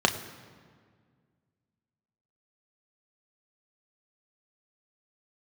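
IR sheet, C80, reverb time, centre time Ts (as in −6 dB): 12.5 dB, 1.8 s, 17 ms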